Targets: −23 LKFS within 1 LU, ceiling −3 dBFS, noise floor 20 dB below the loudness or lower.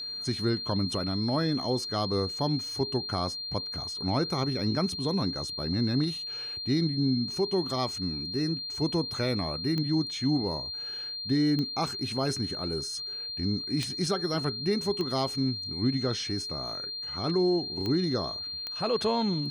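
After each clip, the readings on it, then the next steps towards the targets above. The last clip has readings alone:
number of clicks 6; interfering tone 4,200 Hz; level of the tone −34 dBFS; integrated loudness −29.0 LKFS; sample peak −14.0 dBFS; target loudness −23.0 LKFS
→ click removal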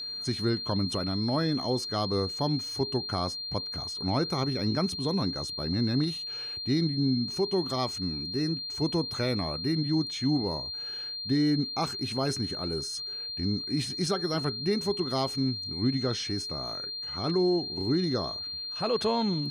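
number of clicks 0; interfering tone 4,200 Hz; level of the tone −34 dBFS
→ notch filter 4,200 Hz, Q 30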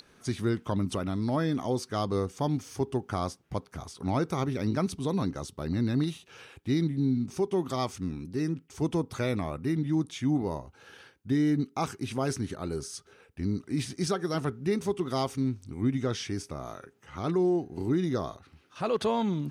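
interfering tone none found; integrated loudness −30.5 LKFS; sample peak −16.0 dBFS; target loudness −23.0 LKFS
→ level +7.5 dB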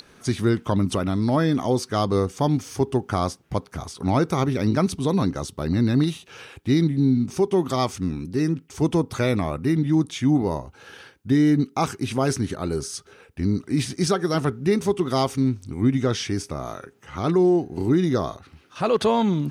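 integrated loudness −23.0 LKFS; sample peak −8.5 dBFS; background noise floor −54 dBFS

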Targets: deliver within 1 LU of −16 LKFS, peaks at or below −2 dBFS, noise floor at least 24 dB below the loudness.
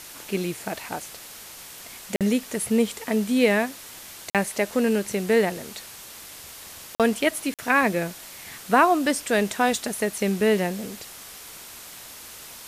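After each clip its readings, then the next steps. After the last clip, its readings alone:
number of dropouts 4; longest dropout 47 ms; background noise floor −42 dBFS; target noise floor −48 dBFS; integrated loudness −24.0 LKFS; sample peak −6.5 dBFS; target loudness −16.0 LKFS
→ repair the gap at 0:02.16/0:04.30/0:06.95/0:07.54, 47 ms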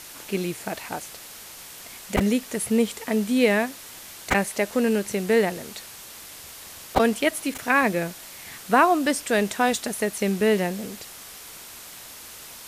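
number of dropouts 0; background noise floor −42 dBFS; target noise floor −48 dBFS
→ noise reduction from a noise print 6 dB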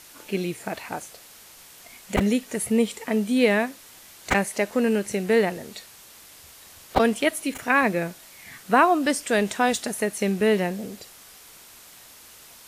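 background noise floor −48 dBFS; integrated loudness −23.5 LKFS; sample peak −5.5 dBFS; target loudness −16.0 LKFS
→ level +7.5 dB
brickwall limiter −2 dBFS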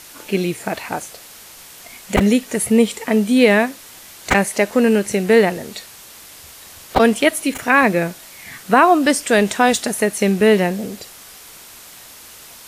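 integrated loudness −16.5 LKFS; sample peak −2.0 dBFS; background noise floor −41 dBFS

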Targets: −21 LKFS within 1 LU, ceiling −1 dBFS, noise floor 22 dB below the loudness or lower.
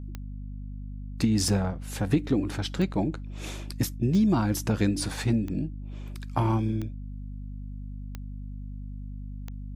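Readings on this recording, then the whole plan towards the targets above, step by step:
number of clicks 8; mains hum 50 Hz; hum harmonics up to 250 Hz; level of the hum −35 dBFS; integrated loudness −27.5 LKFS; sample peak −11.0 dBFS; target loudness −21.0 LKFS
→ click removal
mains-hum notches 50/100/150/200/250 Hz
level +6.5 dB

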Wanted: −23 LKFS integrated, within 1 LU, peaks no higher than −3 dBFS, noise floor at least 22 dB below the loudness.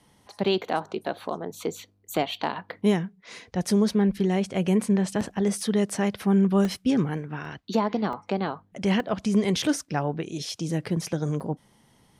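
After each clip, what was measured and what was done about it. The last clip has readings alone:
number of dropouts 6; longest dropout 1.4 ms; integrated loudness −26.5 LKFS; sample peak −11.5 dBFS; target loudness −23.0 LKFS
→ repair the gap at 0:05.61/0:06.65/0:07.45/0:08.13/0:09.00/0:11.40, 1.4 ms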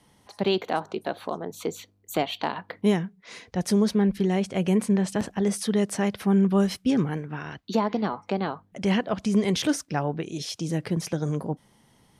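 number of dropouts 0; integrated loudness −26.5 LKFS; sample peak −11.5 dBFS; target loudness −23.0 LKFS
→ level +3.5 dB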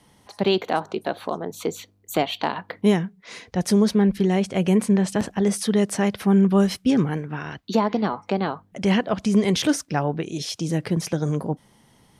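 integrated loudness −23.0 LKFS; sample peak −8.0 dBFS; background noise floor −58 dBFS

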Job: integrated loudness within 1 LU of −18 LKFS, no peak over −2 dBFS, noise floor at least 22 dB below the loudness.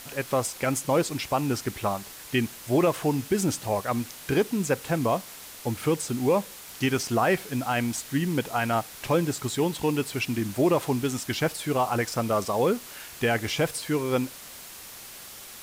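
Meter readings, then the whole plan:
background noise floor −44 dBFS; target noise floor −49 dBFS; integrated loudness −27.0 LKFS; sample peak −12.5 dBFS; target loudness −18.0 LKFS
→ noise reduction from a noise print 6 dB
level +9 dB

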